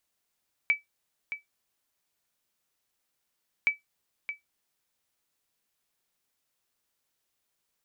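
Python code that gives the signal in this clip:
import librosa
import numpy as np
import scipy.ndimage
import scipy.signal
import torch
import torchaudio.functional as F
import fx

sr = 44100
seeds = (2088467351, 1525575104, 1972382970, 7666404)

y = fx.sonar_ping(sr, hz=2300.0, decay_s=0.15, every_s=2.97, pings=2, echo_s=0.62, echo_db=-11.0, level_db=-15.0)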